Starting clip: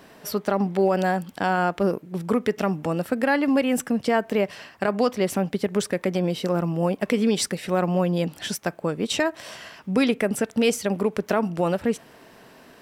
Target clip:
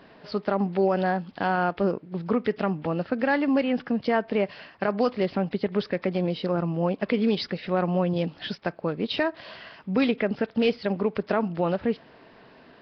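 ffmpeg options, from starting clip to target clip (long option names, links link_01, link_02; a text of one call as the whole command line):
ffmpeg -i in.wav -af "volume=-2dB" -ar 11025 -c:a nellymoser out.flv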